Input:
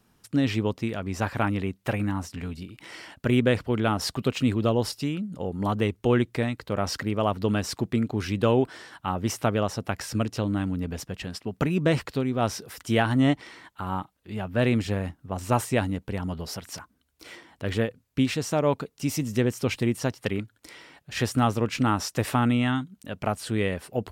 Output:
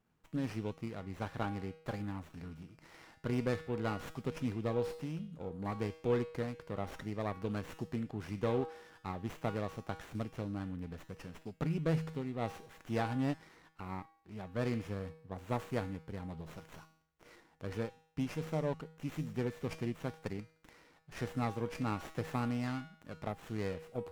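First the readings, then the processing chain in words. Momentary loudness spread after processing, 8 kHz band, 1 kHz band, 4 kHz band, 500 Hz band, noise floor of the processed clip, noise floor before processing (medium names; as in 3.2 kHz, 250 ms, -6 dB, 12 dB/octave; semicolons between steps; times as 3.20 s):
13 LU, -20.5 dB, -12.5 dB, -17.5 dB, -11.0 dB, -69 dBFS, -68 dBFS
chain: feedback comb 160 Hz, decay 0.63 s, harmonics odd, mix 80%; sliding maximum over 9 samples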